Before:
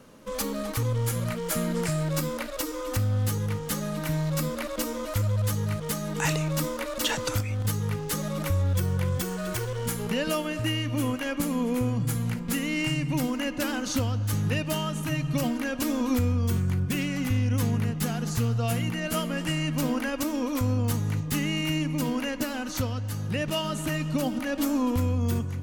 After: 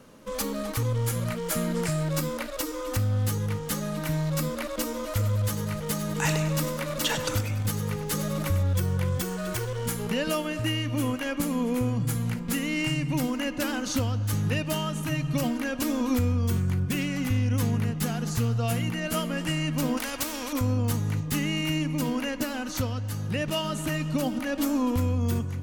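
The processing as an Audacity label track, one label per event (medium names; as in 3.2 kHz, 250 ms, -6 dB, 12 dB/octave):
4.840000	8.630000	two-band feedback delay split 620 Hz, lows 323 ms, highs 99 ms, level -11 dB
19.970000	20.530000	spectrum-flattening compressor 2:1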